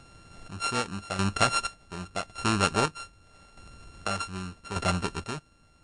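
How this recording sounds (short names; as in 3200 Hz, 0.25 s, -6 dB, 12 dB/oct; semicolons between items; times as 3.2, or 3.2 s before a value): a buzz of ramps at a fixed pitch in blocks of 32 samples; chopped level 0.84 Hz, depth 65%, duty 40%; MP3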